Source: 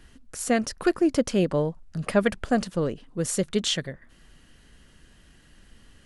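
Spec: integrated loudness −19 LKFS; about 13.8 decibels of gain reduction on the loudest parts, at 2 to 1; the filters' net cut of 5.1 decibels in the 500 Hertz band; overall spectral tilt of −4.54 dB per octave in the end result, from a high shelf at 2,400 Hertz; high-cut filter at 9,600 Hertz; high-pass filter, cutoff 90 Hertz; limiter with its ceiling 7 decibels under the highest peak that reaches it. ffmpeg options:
ffmpeg -i in.wav -af "highpass=90,lowpass=9600,equalizer=frequency=500:width_type=o:gain=-6.5,highshelf=frequency=2400:gain=-3.5,acompressor=threshold=-46dB:ratio=2,volume=24.5dB,alimiter=limit=-8dB:level=0:latency=1" out.wav

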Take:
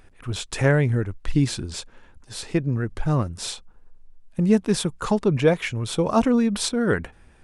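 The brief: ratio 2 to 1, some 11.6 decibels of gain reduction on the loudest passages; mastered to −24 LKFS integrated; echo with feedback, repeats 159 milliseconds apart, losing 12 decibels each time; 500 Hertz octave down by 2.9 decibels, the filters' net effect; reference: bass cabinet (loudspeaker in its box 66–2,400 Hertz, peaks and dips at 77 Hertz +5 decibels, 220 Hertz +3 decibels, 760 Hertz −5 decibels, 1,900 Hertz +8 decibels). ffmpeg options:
ffmpeg -i in.wav -af "equalizer=frequency=500:width_type=o:gain=-3,acompressor=threshold=-36dB:ratio=2,highpass=frequency=66:width=0.5412,highpass=frequency=66:width=1.3066,equalizer=frequency=77:width_type=q:width=4:gain=5,equalizer=frequency=220:width_type=q:width=4:gain=3,equalizer=frequency=760:width_type=q:width=4:gain=-5,equalizer=frequency=1900:width_type=q:width=4:gain=8,lowpass=frequency=2400:width=0.5412,lowpass=frequency=2400:width=1.3066,aecho=1:1:159|318|477:0.251|0.0628|0.0157,volume=8.5dB" out.wav

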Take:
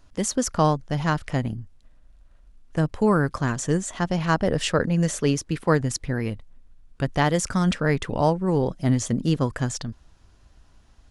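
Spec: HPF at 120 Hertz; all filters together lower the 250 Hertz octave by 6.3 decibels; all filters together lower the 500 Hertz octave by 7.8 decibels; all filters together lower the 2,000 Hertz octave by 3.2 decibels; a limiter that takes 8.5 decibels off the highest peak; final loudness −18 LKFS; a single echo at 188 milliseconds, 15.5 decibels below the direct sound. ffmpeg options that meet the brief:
ffmpeg -i in.wav -af "highpass=120,equalizer=frequency=250:width_type=o:gain=-7,equalizer=frequency=500:width_type=o:gain=-7.5,equalizer=frequency=2000:width_type=o:gain=-3.5,alimiter=limit=-19dB:level=0:latency=1,aecho=1:1:188:0.168,volume=12dB" out.wav

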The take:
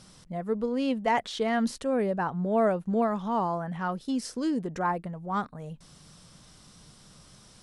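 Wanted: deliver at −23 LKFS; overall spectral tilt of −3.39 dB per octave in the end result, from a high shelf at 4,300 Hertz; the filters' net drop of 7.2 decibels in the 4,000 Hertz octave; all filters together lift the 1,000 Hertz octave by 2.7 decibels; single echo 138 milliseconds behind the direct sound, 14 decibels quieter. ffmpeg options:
ffmpeg -i in.wav -af "equalizer=frequency=1000:width_type=o:gain=4,equalizer=frequency=4000:width_type=o:gain=-8,highshelf=frequency=4300:gain=-3.5,aecho=1:1:138:0.2,volume=5dB" out.wav

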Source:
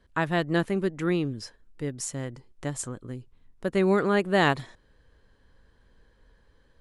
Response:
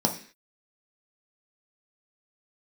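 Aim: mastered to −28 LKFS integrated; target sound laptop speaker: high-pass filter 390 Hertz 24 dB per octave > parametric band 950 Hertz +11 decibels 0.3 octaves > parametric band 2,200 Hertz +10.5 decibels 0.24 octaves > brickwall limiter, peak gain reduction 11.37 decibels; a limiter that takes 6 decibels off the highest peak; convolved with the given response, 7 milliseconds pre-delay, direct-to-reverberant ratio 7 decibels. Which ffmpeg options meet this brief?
-filter_complex "[0:a]alimiter=limit=-15.5dB:level=0:latency=1,asplit=2[link_01][link_02];[1:a]atrim=start_sample=2205,adelay=7[link_03];[link_02][link_03]afir=irnorm=-1:irlink=0,volume=-18dB[link_04];[link_01][link_04]amix=inputs=2:normalize=0,highpass=frequency=390:width=0.5412,highpass=frequency=390:width=1.3066,equalizer=frequency=950:width_type=o:width=0.3:gain=11,equalizer=frequency=2200:width_type=o:width=0.24:gain=10.5,volume=5dB,alimiter=limit=-15dB:level=0:latency=1"

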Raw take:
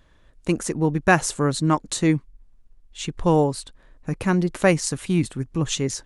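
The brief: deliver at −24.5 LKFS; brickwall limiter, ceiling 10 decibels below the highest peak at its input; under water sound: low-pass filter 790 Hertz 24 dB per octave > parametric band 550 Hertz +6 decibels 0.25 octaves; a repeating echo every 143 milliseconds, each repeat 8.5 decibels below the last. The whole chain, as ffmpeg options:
ffmpeg -i in.wav -af "alimiter=limit=-12dB:level=0:latency=1,lowpass=frequency=790:width=0.5412,lowpass=frequency=790:width=1.3066,equalizer=frequency=550:width_type=o:width=0.25:gain=6,aecho=1:1:143|286|429|572:0.376|0.143|0.0543|0.0206" out.wav

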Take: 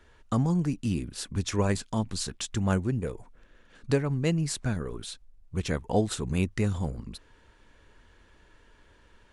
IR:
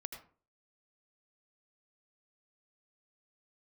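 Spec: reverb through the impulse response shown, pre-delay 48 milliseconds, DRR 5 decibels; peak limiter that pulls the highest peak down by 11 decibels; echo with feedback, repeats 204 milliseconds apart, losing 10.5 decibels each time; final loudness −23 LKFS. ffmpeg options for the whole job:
-filter_complex "[0:a]alimiter=limit=-23.5dB:level=0:latency=1,aecho=1:1:204|408|612:0.299|0.0896|0.0269,asplit=2[link_01][link_02];[1:a]atrim=start_sample=2205,adelay=48[link_03];[link_02][link_03]afir=irnorm=-1:irlink=0,volume=-2.5dB[link_04];[link_01][link_04]amix=inputs=2:normalize=0,volume=10dB"

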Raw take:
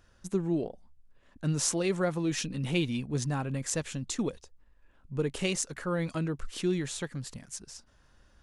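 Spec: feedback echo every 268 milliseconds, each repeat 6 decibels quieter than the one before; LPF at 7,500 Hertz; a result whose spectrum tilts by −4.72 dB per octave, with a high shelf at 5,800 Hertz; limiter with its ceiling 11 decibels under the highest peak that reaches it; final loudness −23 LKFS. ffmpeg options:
ffmpeg -i in.wav -af "lowpass=7500,highshelf=frequency=5800:gain=5.5,alimiter=limit=-24dB:level=0:latency=1,aecho=1:1:268|536|804|1072|1340|1608:0.501|0.251|0.125|0.0626|0.0313|0.0157,volume=11dB" out.wav

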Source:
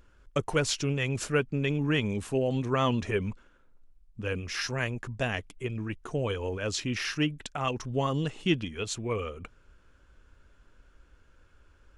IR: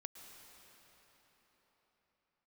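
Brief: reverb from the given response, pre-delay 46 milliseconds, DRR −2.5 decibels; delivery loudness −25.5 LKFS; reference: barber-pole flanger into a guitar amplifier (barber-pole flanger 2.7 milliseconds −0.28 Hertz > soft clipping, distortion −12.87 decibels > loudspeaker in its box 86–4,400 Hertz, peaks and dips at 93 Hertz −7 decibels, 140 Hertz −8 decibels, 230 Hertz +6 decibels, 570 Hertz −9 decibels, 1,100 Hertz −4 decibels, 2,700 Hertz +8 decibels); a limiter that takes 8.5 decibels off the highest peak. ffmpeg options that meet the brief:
-filter_complex "[0:a]alimiter=limit=-21.5dB:level=0:latency=1,asplit=2[link_01][link_02];[1:a]atrim=start_sample=2205,adelay=46[link_03];[link_02][link_03]afir=irnorm=-1:irlink=0,volume=7dB[link_04];[link_01][link_04]amix=inputs=2:normalize=0,asplit=2[link_05][link_06];[link_06]adelay=2.7,afreqshift=-0.28[link_07];[link_05][link_07]amix=inputs=2:normalize=1,asoftclip=threshold=-27.5dB,highpass=86,equalizer=frequency=93:width_type=q:width=4:gain=-7,equalizer=frequency=140:width_type=q:width=4:gain=-8,equalizer=frequency=230:width_type=q:width=4:gain=6,equalizer=frequency=570:width_type=q:width=4:gain=-9,equalizer=frequency=1100:width_type=q:width=4:gain=-4,equalizer=frequency=2700:width_type=q:width=4:gain=8,lowpass=frequency=4400:width=0.5412,lowpass=frequency=4400:width=1.3066,volume=8.5dB"

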